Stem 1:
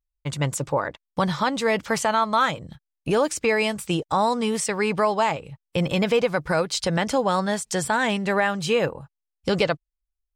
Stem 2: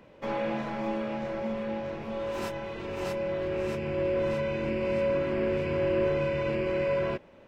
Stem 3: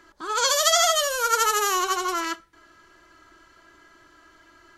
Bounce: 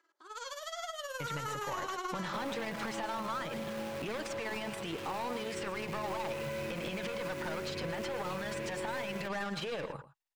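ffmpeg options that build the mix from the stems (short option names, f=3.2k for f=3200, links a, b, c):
-filter_complex "[0:a]asplit=2[a][b];[b]highpass=f=720:p=1,volume=25dB,asoftclip=type=tanh:threshold=-9.5dB[c];[a][c]amix=inputs=2:normalize=0,lowpass=f=3.4k:p=1,volume=-6dB,aphaser=in_gain=1:out_gain=1:delay=1.1:decay=0.3:speed=0.7:type=sinusoidal,adelay=950,volume=-10.5dB,asplit=2[d][e];[e]volume=-18.5dB[f];[1:a]highpass=f=61:w=0.5412,highpass=f=61:w=1.3066,acrusher=bits=7:dc=4:mix=0:aa=0.000001,adelay=2100,volume=-4.5dB[g];[2:a]highpass=f=330:w=0.5412,highpass=f=330:w=1.3066,volume=-5dB,afade=t=in:st=0.96:d=0.45:silence=0.251189,asplit=2[h][i];[i]volume=-22.5dB[j];[d][h]amix=inputs=2:normalize=0,tremolo=f=19:d=0.6,alimiter=level_in=0.5dB:limit=-24dB:level=0:latency=1:release=28,volume=-0.5dB,volume=0dB[k];[f][j]amix=inputs=2:normalize=0,aecho=0:1:115:1[l];[g][k][l]amix=inputs=3:normalize=0,acrossover=split=1000|3700[m][n][o];[m]acompressor=threshold=-36dB:ratio=4[p];[n]acompressor=threshold=-39dB:ratio=4[q];[o]acompressor=threshold=-51dB:ratio=4[r];[p][q][r]amix=inputs=3:normalize=0,aeval=exprs='0.075*(cos(1*acos(clip(val(0)/0.075,-1,1)))-cos(1*PI/2))+0.00376*(cos(4*acos(clip(val(0)/0.075,-1,1)))-cos(4*PI/2))':c=same,alimiter=level_in=3.5dB:limit=-24dB:level=0:latency=1:release=51,volume=-3.5dB"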